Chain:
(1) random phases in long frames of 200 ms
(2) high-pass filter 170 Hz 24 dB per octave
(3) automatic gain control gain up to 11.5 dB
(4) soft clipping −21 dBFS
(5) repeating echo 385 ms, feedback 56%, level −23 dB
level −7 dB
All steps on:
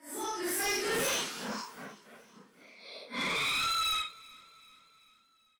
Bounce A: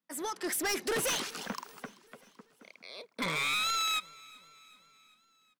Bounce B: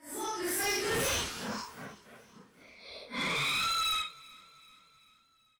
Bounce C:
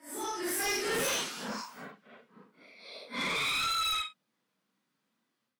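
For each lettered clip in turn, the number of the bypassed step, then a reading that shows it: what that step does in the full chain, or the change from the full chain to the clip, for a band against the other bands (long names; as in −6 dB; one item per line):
1, 125 Hz band +2.0 dB
2, 125 Hz band +6.0 dB
5, echo-to-direct ratio −21.5 dB to none audible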